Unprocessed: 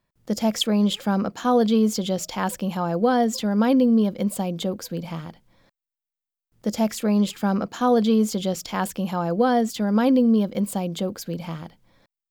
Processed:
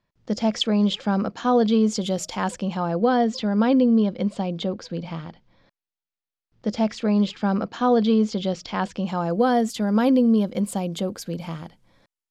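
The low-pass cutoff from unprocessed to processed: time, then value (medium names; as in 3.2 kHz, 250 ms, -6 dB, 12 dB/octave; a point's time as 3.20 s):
low-pass 24 dB/octave
1.82 s 6 kHz
2.11 s 12 kHz
2.91 s 5.3 kHz
8.87 s 5.3 kHz
9.43 s 12 kHz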